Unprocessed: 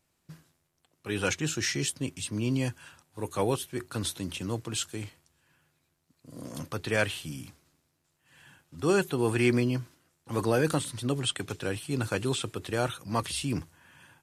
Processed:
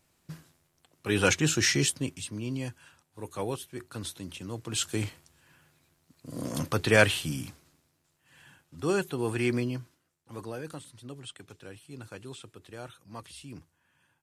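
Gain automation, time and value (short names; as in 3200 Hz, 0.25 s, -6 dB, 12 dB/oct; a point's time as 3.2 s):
1.8 s +5 dB
2.4 s -5.5 dB
4.53 s -5.5 dB
4.95 s +6.5 dB
7.15 s +6.5 dB
9.06 s -3.5 dB
9.62 s -3.5 dB
10.64 s -14 dB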